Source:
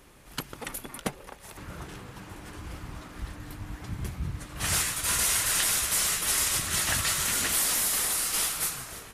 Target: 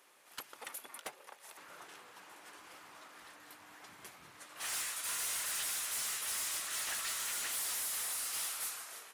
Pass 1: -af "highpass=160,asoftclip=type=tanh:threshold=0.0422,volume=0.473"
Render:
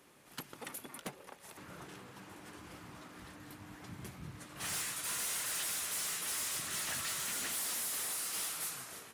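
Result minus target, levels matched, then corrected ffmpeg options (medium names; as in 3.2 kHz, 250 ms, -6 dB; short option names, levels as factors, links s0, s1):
125 Hz band +16.5 dB
-af "highpass=600,asoftclip=type=tanh:threshold=0.0422,volume=0.473"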